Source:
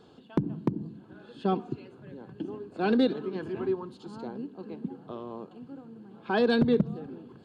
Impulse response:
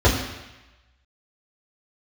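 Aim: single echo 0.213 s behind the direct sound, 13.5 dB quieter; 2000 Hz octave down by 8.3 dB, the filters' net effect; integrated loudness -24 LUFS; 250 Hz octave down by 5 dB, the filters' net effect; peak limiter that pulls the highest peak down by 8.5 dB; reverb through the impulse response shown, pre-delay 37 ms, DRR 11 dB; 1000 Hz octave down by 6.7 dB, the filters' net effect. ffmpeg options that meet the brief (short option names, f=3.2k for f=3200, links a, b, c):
-filter_complex "[0:a]equalizer=f=250:t=o:g=-5.5,equalizer=f=1k:t=o:g=-8,equalizer=f=2k:t=o:g=-8,alimiter=level_in=1dB:limit=-24dB:level=0:latency=1,volume=-1dB,aecho=1:1:213:0.211,asplit=2[a][b];[1:a]atrim=start_sample=2205,adelay=37[c];[b][c]afir=irnorm=-1:irlink=0,volume=-32dB[d];[a][d]amix=inputs=2:normalize=0,volume=13dB"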